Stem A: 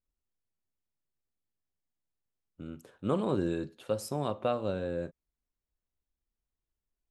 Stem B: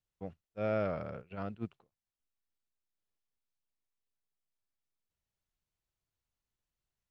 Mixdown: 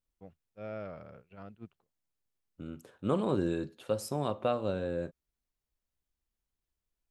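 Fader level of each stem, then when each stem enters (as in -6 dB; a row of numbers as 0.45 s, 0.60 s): 0.0 dB, -8.5 dB; 0.00 s, 0.00 s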